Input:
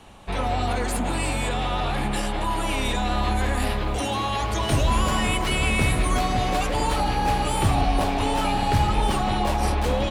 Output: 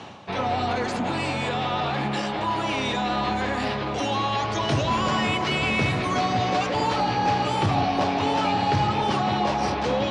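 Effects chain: Chebyshev band-pass 110–5700 Hz, order 3; reverse; upward compressor, threshold -28 dBFS; reverse; core saturation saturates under 220 Hz; gain +1.5 dB

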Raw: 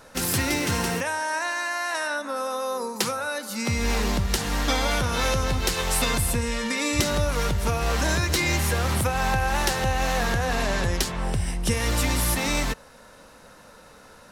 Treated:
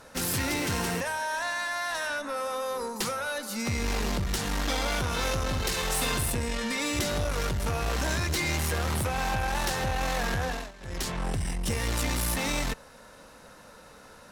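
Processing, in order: tube stage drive 24 dB, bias 0.4; 5.46–6.32 flutter echo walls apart 9 m, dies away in 0.44 s; 10.44–11.08 dip -20 dB, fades 0.28 s

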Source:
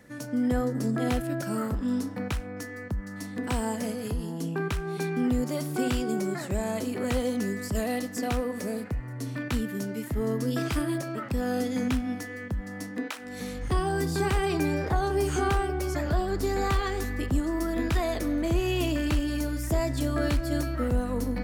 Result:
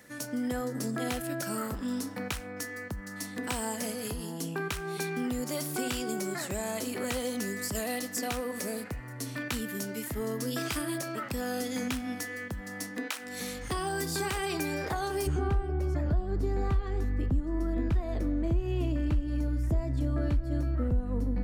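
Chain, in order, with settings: tilt +2 dB/oct, from 15.26 s -3 dB/oct; compressor 3:1, threshold -29 dBFS, peak gain reduction 15 dB

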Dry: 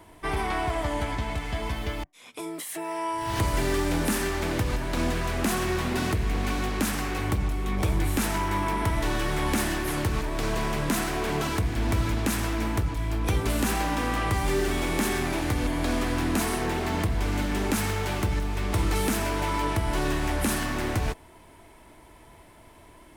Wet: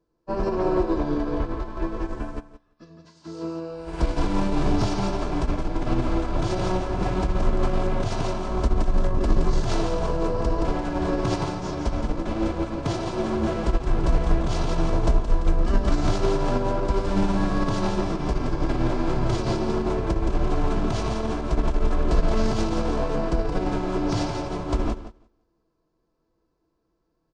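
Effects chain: low shelf 240 Hz -7 dB; comb 1.5 ms, depth 40%; feedback echo 0.145 s, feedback 40%, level -5 dB; speed mistake 15 ips tape played at 7.5 ips; notch 1900 Hz, Q 11; hard clip -17 dBFS, distortion -40 dB; tilt shelf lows +5.5 dB, about 1300 Hz; de-hum 409.4 Hz, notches 36; time stretch by phase-locked vocoder 0.59×; maximiser +15.5 dB; upward expander 2.5:1, over -26 dBFS; gain -6.5 dB

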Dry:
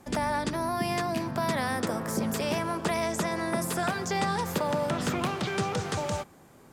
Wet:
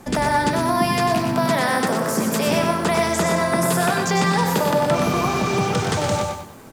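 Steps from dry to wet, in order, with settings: 1.34–2.47 HPF 130 Hz 24 dB/oct; 4.97–5.61 spectral repair 1100–10000 Hz after; in parallel at -0.5 dB: limiter -27.5 dBFS, peak gain reduction 11 dB; on the sum: echo 0.12 s -6.5 dB; on a send at -11.5 dB: reverb RT60 0.35 s, pre-delay 4 ms; on the sum: lo-fi delay 96 ms, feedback 35%, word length 8-bit, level -6.5 dB; gain +4.5 dB

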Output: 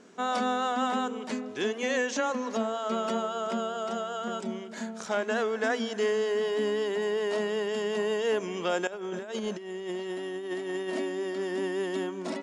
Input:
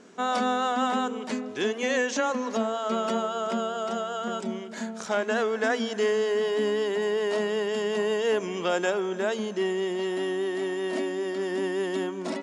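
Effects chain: 8.87–10.9 negative-ratio compressor -31 dBFS, ratio -0.5; gain -2.5 dB

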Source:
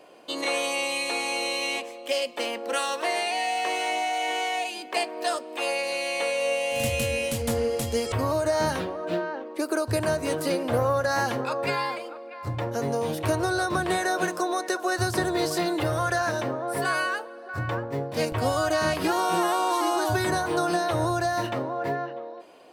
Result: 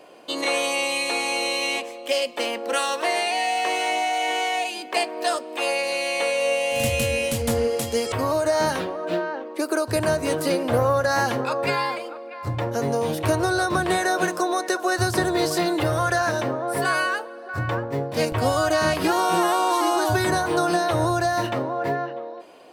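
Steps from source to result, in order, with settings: 7.67–9.96 HPF 180 Hz 6 dB/oct; gain +3.5 dB

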